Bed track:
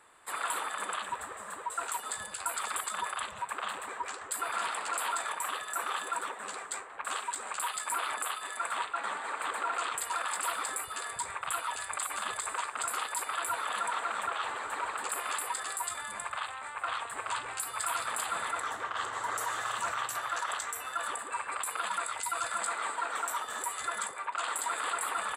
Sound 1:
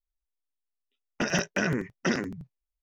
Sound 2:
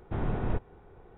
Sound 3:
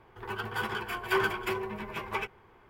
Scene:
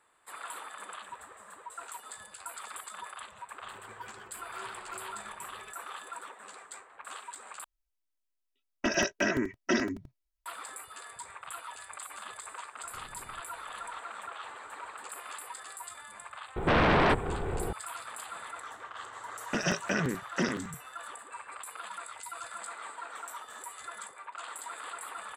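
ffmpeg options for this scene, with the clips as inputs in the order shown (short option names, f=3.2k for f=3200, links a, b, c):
-filter_complex "[1:a]asplit=2[a][b];[2:a]asplit=2[c][d];[0:a]volume=-8.5dB[e];[3:a]alimiter=limit=-22.5dB:level=0:latency=1:release=71[f];[a]aecho=1:1:3.1:0.92[g];[c]acompressor=threshold=-38dB:ratio=6:attack=3.2:release=140:knee=1:detection=peak[h];[d]aeval=exprs='0.133*sin(PI/2*8.91*val(0)/0.133)':c=same[i];[e]asplit=2[j][k];[j]atrim=end=7.644[l];[g]atrim=end=2.82,asetpts=PTS-STARTPTS,volume=-3dB[m];[k]atrim=start=10.456[n];[f]atrim=end=2.69,asetpts=PTS-STARTPTS,volume=-17dB,afade=t=in:d=0.004:c=hsin,afade=t=out:st=2.686:d=0.004:c=hsin,adelay=152145S[o];[h]atrim=end=1.17,asetpts=PTS-STARTPTS,volume=-13.5dB,afade=t=in:d=0.004:c=hsin,afade=t=out:st=1.166:d=0.004:c=hsin,adelay=12830[p];[i]atrim=end=1.17,asetpts=PTS-STARTPTS,volume=-2.5dB,afade=t=in:d=0.004:c=hsin,afade=t=out:st=1.166:d=0.004:c=hsin,adelay=16560[q];[b]atrim=end=2.82,asetpts=PTS-STARTPTS,volume=-3dB,afade=t=in:d=0.004:c=hsin,afade=t=out:st=2.816:d=0.004:c=hsin,adelay=18330[r];[l][m]acrossfade=d=0.004:c1=hsin:c2=hsin[s];[s][n]acrossfade=d=0.004:c1=hsin:c2=hsin[t];[t][o][p][q][r]amix=inputs=5:normalize=0"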